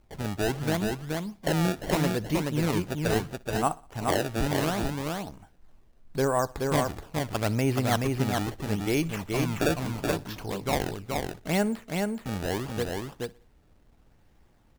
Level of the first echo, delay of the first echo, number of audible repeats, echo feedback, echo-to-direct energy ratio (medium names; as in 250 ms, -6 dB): -23.0 dB, 61 ms, 5, no regular repeats, -3.5 dB